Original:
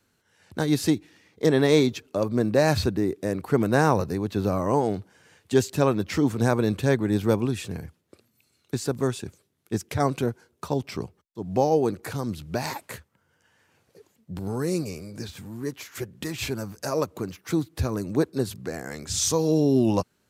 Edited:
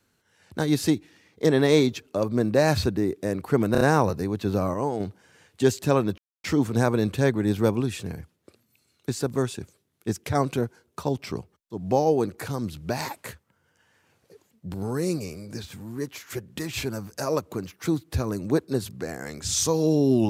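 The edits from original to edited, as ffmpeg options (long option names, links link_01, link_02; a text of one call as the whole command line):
ffmpeg -i in.wav -filter_complex "[0:a]asplit=7[link_01][link_02][link_03][link_04][link_05][link_06][link_07];[link_01]atrim=end=3.752[link_08];[link_02]atrim=start=3.718:end=3.752[link_09];[link_03]atrim=start=3.718:end=3.752[link_10];[link_04]atrim=start=3.718:end=4.652[link_11];[link_05]atrim=start=4.648:end=4.912,asetpts=PTS-STARTPTS,volume=-4.5dB[link_12];[link_06]atrim=start=4.908:end=6.09,asetpts=PTS-STARTPTS,afade=type=out:start_time=1.178:duration=0.004:curve=hsin,apad=pad_dur=0.26[link_13];[link_07]atrim=start=6.09,asetpts=PTS-STARTPTS,afade=type=in:duration=0.004:curve=hsin[link_14];[link_08][link_09]acrossfade=duration=0.004:curve1=hsin:curve2=hsin[link_15];[link_15][link_10]acrossfade=duration=0.004:curve1=hsin:curve2=hsin[link_16];[link_16][link_11]acrossfade=duration=0.004:curve1=hsin:curve2=hsin[link_17];[link_17][link_12]acrossfade=duration=0.004:curve1=hsin:curve2=hsin[link_18];[link_13][link_14]concat=n=2:v=0:a=1[link_19];[link_18][link_19]acrossfade=duration=0.004:curve1=hsin:curve2=hsin" out.wav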